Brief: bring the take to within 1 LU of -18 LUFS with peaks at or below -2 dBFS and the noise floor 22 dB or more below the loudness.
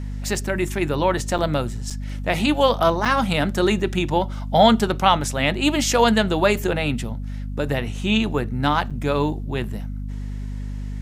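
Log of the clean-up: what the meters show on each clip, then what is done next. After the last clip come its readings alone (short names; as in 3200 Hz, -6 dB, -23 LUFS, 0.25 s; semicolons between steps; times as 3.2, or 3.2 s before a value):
dropouts 4; longest dropout 6.5 ms; hum 50 Hz; harmonics up to 250 Hz; hum level -26 dBFS; loudness -21.0 LUFS; peak -2.0 dBFS; loudness target -18.0 LUFS
-> interpolate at 1.38/1.9/3.05/8.9, 6.5 ms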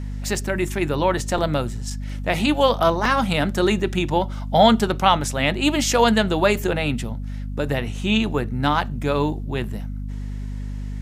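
dropouts 0; hum 50 Hz; harmonics up to 250 Hz; hum level -26 dBFS
-> notches 50/100/150/200/250 Hz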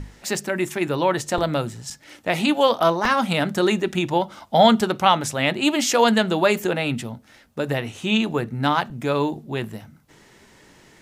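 hum none; loudness -21.5 LUFS; peak -2.5 dBFS; loudness target -18.0 LUFS
-> gain +3.5 dB; limiter -2 dBFS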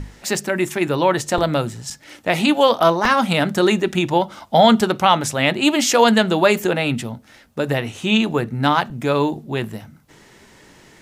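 loudness -18.0 LUFS; peak -2.0 dBFS; noise floor -49 dBFS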